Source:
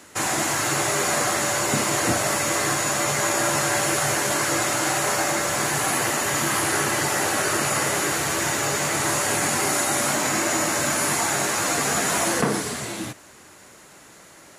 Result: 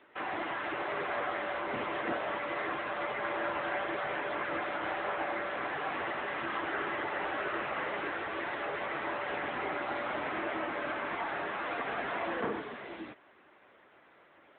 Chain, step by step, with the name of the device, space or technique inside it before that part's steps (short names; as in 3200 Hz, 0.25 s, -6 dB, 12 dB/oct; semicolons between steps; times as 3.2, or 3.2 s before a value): telephone (BPF 290–3100 Hz; gain -8 dB; AMR-NB 10.2 kbps 8000 Hz)